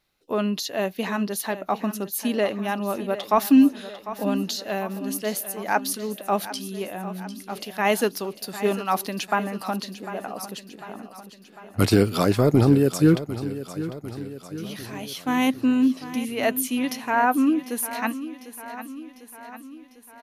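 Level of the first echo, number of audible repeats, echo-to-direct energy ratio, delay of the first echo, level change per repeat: -13.5 dB, 5, -11.5 dB, 749 ms, -4.5 dB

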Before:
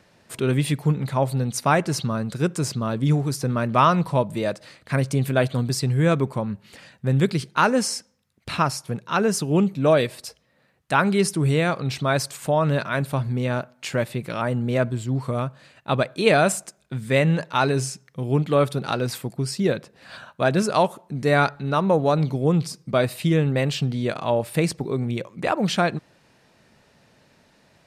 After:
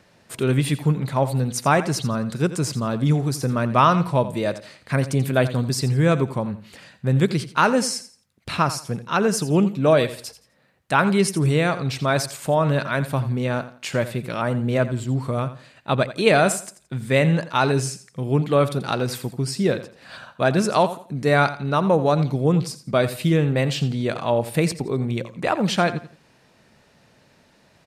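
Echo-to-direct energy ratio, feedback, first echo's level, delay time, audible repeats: -13.5 dB, 27%, -14.0 dB, 85 ms, 2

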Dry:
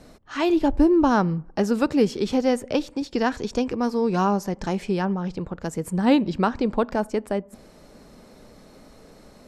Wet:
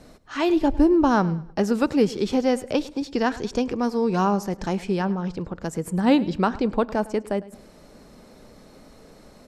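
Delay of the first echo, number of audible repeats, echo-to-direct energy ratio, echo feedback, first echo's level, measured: 105 ms, 2, -18.5 dB, 32%, -19.0 dB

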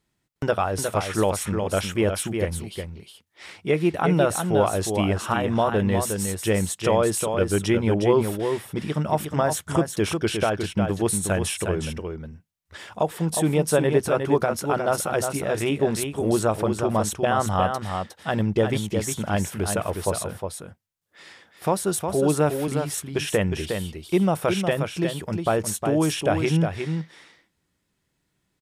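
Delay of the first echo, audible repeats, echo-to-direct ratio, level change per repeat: 360 ms, 1, -6.0 dB, no regular repeats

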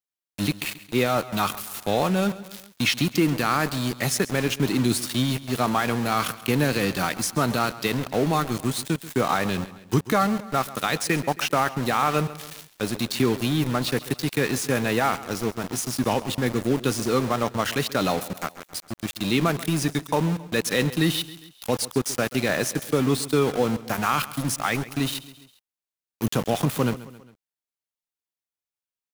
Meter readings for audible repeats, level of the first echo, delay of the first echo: 3, -17.0 dB, 135 ms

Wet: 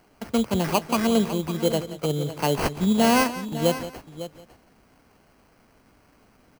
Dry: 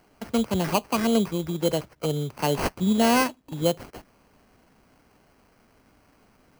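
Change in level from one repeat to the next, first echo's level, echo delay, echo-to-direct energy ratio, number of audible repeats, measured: no regular repeats, -14.5 dB, 176 ms, -10.5 dB, 3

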